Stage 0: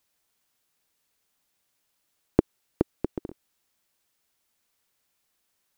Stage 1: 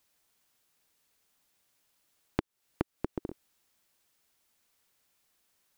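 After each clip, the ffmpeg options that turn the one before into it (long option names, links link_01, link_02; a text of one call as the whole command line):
ffmpeg -i in.wav -af "acompressor=threshold=-30dB:ratio=6,volume=1.5dB" out.wav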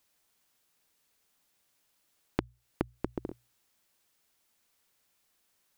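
ffmpeg -i in.wav -af "bandreject=frequency=60:width_type=h:width=6,bandreject=frequency=120:width_type=h:width=6" out.wav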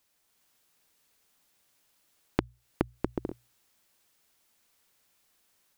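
ffmpeg -i in.wav -af "dynaudnorm=framelen=220:gausssize=3:maxgain=3.5dB" out.wav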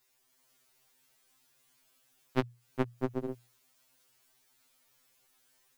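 ffmpeg -i in.wav -af "afftfilt=real='re*2.45*eq(mod(b,6),0)':imag='im*2.45*eq(mod(b,6),0)':win_size=2048:overlap=0.75,volume=3dB" out.wav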